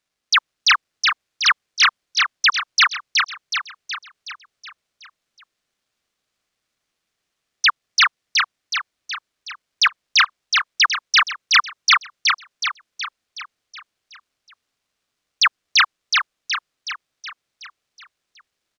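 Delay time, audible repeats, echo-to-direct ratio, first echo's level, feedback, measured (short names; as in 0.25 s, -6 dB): 0.371 s, 6, -1.5 dB, -3.0 dB, 53%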